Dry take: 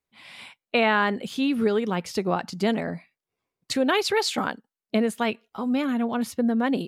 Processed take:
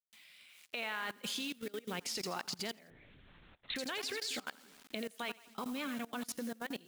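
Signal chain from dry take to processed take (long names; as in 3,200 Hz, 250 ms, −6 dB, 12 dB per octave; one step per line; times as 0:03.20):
downward compressor 20 to 1, threshold −31 dBFS, peak gain reduction 15.5 dB
rotating-speaker cabinet horn 0.75 Hz, later 5.5 Hz, at 0:04.63
echo with a time of its own for lows and highs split 360 Hz, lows 270 ms, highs 84 ms, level −12 dB
bit-depth reduction 10 bits, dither none
tilt shelving filter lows −8 dB, about 920 Hz
log-companded quantiser 6 bits
0:02.90–0:03.76: linear-prediction vocoder at 8 kHz whisper
output level in coarse steps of 21 dB
level +3 dB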